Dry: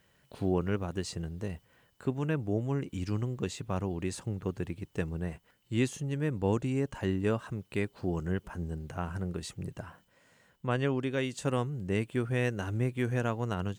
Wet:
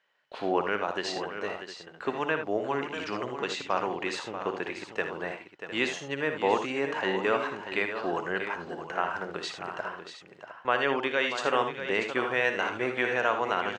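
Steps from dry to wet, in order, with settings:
high-pass filter 730 Hz 12 dB per octave
noise gate −60 dBFS, range −15 dB
in parallel at +1 dB: brickwall limiter −29 dBFS, peak gain reduction 10 dB
on the sum: high-frequency loss of the air 190 metres
multi-tap delay 58/79/638/707 ms −10/−10/−10/−13 dB
level +7.5 dB

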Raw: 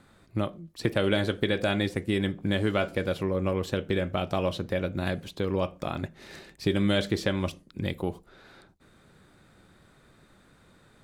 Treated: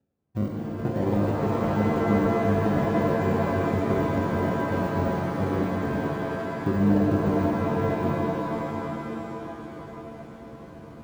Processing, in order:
sample-and-hold swept by an LFO 40×, swing 60% 0.57 Hz
high-shelf EQ 2,700 Hz −6 dB
de-essing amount 90%
low-shelf EQ 480 Hz +10 dB
reversed playback
upward compression, threshold −29 dBFS
reversed playback
noise gate −41 dBFS, range −23 dB
high-pass filter 65 Hz
reverb with rising layers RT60 3.8 s, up +7 semitones, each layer −2 dB, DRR −0.5 dB
level −8 dB

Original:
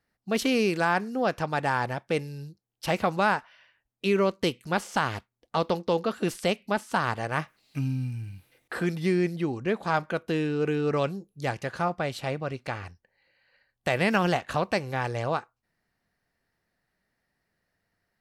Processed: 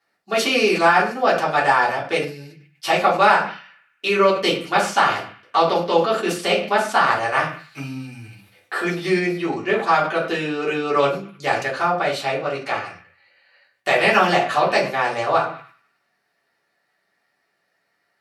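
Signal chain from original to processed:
meter weighting curve A
on a send: feedback echo with a band-pass in the loop 98 ms, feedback 59%, band-pass 2,100 Hz, level −20 dB
on the sum: rectangular room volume 130 cubic metres, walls furnished, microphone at 3.3 metres
level that may fall only so fast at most 110 dB per second
level +2 dB

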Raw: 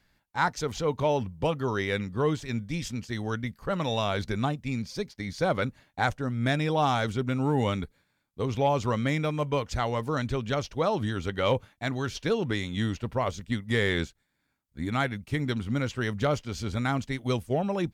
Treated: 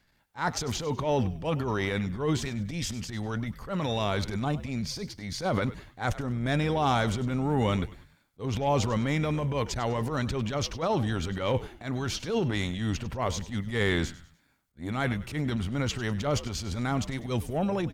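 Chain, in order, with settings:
transient designer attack −12 dB, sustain +8 dB
echo with shifted repeats 99 ms, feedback 38%, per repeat −81 Hz, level −16 dB

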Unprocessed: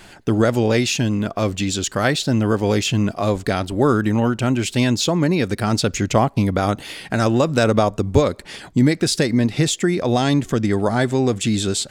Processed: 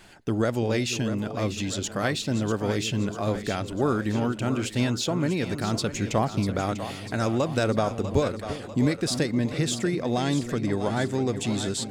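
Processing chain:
echo with a time of its own for lows and highs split 440 Hz, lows 341 ms, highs 645 ms, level −10 dB
level −8 dB

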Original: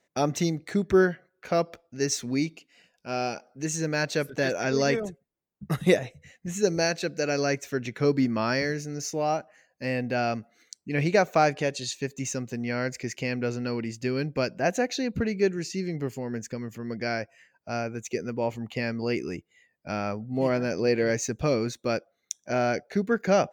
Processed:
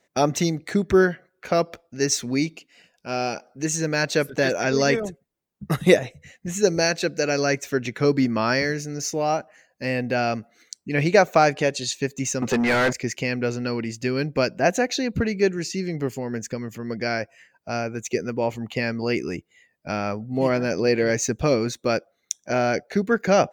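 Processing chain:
0:12.42–0:12.93: mid-hump overdrive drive 29 dB, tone 2,000 Hz, clips at −16 dBFS
harmonic and percussive parts rebalanced percussive +3 dB
level +3 dB

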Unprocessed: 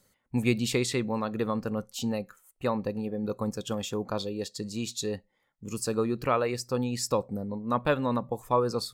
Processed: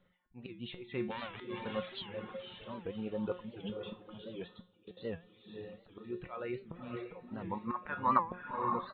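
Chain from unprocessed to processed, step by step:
0:01.10–0:01.64: spectral envelope flattened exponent 0.1
volume swells 473 ms
0:07.28–0:08.22: flat-topped bell 1,400 Hz +15 dB
feedback delay with all-pass diffusion 555 ms, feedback 47%, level −4 dB
0:04.61–0:05.05: output level in coarse steps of 14 dB
reverb reduction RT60 1.2 s
tuned comb filter 180 Hz, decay 0.33 s, harmonics all, mix 80%
de-essing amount 90%
downsampling to 8,000 Hz
wow of a warped record 78 rpm, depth 160 cents
level +7.5 dB

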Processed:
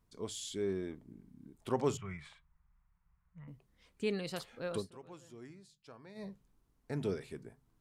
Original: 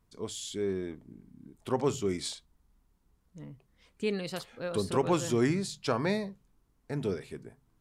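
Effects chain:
0:01.97–0:03.48: drawn EQ curve 170 Hz 0 dB, 270 Hz −26 dB, 1,100 Hz +3 dB, 2,300 Hz +1 dB, 4,500 Hz −24 dB
0:04.73–0:06.30: duck −21.5 dB, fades 0.15 s
level −3.5 dB

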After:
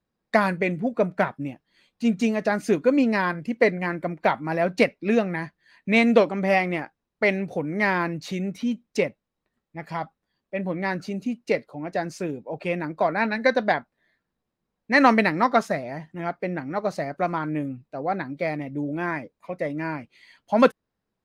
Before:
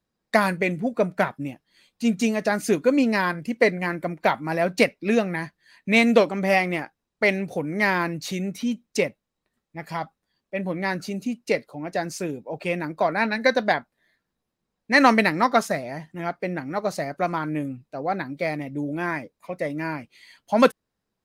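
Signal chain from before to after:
low-pass filter 3,000 Hz 6 dB per octave

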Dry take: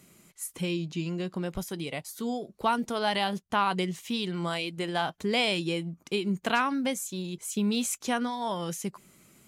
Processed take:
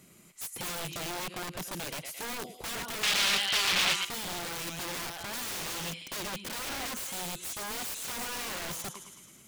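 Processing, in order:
on a send: feedback echo with a high-pass in the loop 109 ms, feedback 71%, high-pass 1,000 Hz, level −8 dB
on the sum: downward compressor 2 to 1, threshold −30 dBFS, peak gain reduction 6 dB
wrap-around overflow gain 31.5 dB
0:03.03–0:04.05: parametric band 3,100 Hz +15 dB 2.6 octaves

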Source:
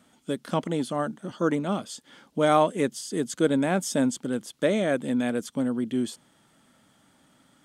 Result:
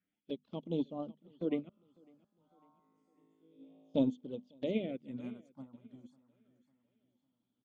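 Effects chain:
spectral magnitudes quantised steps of 15 dB
low-pass filter 3,300 Hz 12 dB per octave
low-shelf EQ 210 Hz −4 dB
mains-hum notches 50/100/150/200/250 Hz
brickwall limiter −17 dBFS, peak gain reduction 8.5 dB
flanger swept by the level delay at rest 11.1 ms, full sweep at −28 dBFS
0:01.69–0:03.95: tuned comb filter 54 Hz, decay 1.7 s, harmonics all, mix 100%
all-pass phaser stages 4, 0.3 Hz, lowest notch 420–1,800 Hz
repeating echo 552 ms, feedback 45%, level −13 dB
expander for the loud parts 2.5 to 1, over −39 dBFS

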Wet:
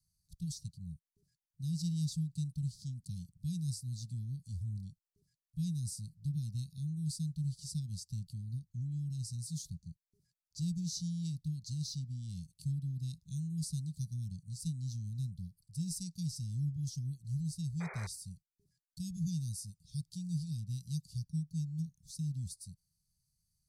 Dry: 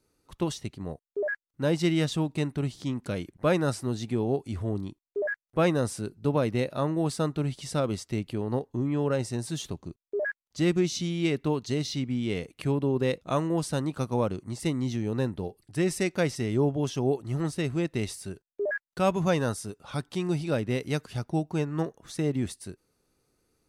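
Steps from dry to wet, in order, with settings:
Chebyshev band-stop filter 170–4,500 Hz, order 4
sound drawn into the spectrogram noise, 0:17.80–0:18.07, 360–2,500 Hz −43 dBFS
level −4.5 dB

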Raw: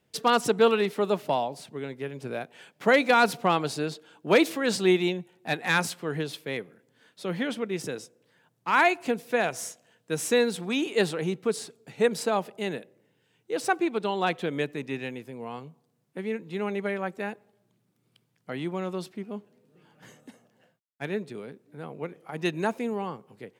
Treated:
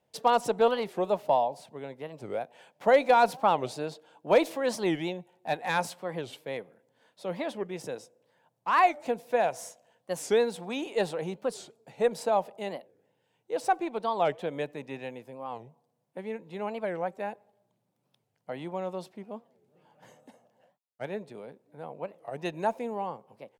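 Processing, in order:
harmonic generator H 2 −21 dB, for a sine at −6.5 dBFS
flat-topped bell 710 Hz +9.5 dB 1.2 octaves
wow of a warped record 45 rpm, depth 250 cents
level −7 dB

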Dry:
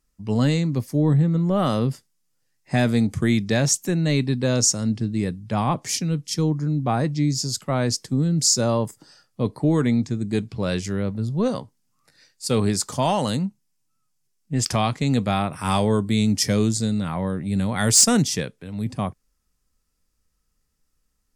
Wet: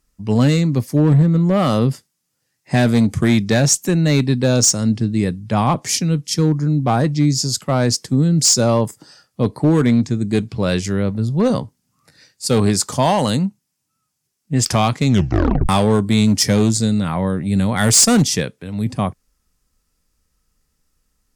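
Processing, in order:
0:11.50–0:12.47: low-shelf EQ 270 Hz +7 dB
asymmetric clip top −14.5 dBFS, bottom −13.5 dBFS
0:15.06: tape stop 0.63 s
level +6 dB

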